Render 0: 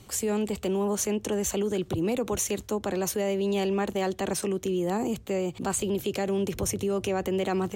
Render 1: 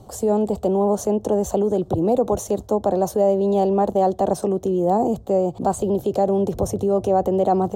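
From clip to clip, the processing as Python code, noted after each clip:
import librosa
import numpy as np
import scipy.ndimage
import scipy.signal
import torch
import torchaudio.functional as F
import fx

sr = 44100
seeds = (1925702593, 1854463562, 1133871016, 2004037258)

y = fx.curve_eq(x, sr, hz=(370.0, 710.0, 2300.0, 3700.0), db=(0, 9, -23, -11))
y = y * librosa.db_to_amplitude(6.5)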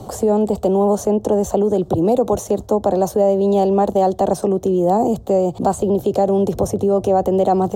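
y = fx.band_squash(x, sr, depth_pct=40)
y = y * librosa.db_to_amplitude(3.0)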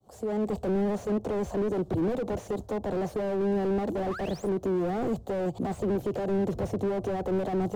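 y = fx.fade_in_head(x, sr, length_s=0.55)
y = fx.spec_paint(y, sr, seeds[0], shape='rise', start_s=3.86, length_s=0.63, low_hz=220.0, high_hz=11000.0, level_db=-26.0)
y = fx.slew_limit(y, sr, full_power_hz=50.0)
y = y * librosa.db_to_amplitude(-8.0)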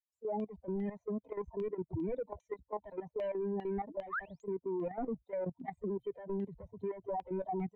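y = fx.bin_expand(x, sr, power=3.0)
y = fx.filter_lfo_lowpass(y, sr, shape='saw_down', hz=2.5, low_hz=810.0, high_hz=3000.0, q=2.6)
y = fx.level_steps(y, sr, step_db=12)
y = y * librosa.db_to_amplitude(1.0)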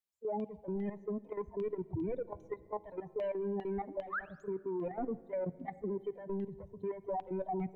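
y = fx.room_shoebox(x, sr, seeds[1], volume_m3=3700.0, walls='mixed', distance_m=0.34)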